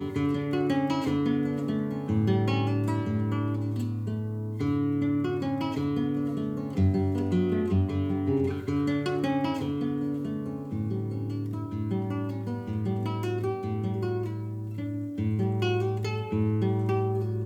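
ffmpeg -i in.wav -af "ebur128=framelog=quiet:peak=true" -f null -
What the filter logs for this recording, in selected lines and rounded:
Integrated loudness:
  I:         -28.7 LUFS
  Threshold: -38.7 LUFS
Loudness range:
  LRA:         4.1 LU
  Threshold: -48.9 LUFS
  LRA low:   -31.4 LUFS
  LRA high:  -27.3 LUFS
True peak:
  Peak:      -14.1 dBFS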